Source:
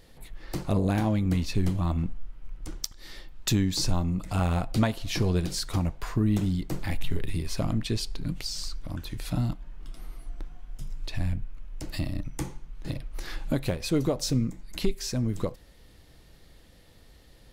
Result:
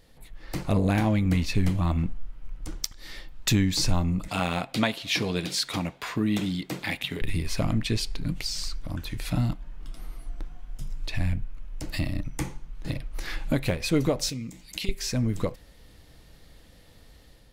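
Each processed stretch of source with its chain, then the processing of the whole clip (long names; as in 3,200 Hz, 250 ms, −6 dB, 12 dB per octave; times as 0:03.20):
0:04.28–0:07.22: high-pass filter 180 Hz + parametric band 3,400 Hz +7 dB 0.8 octaves + notch filter 3,000 Hz, Q 27
0:14.29–0:14.89: high-pass filter 100 Hz 6 dB per octave + high shelf with overshoot 2,000 Hz +8 dB, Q 1.5 + downward compressor 2 to 1, threshold −40 dBFS
whole clip: notch filter 370 Hz, Q 12; dynamic equaliser 2,200 Hz, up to +6 dB, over −53 dBFS, Q 1.8; automatic gain control gain up to 5 dB; level −3 dB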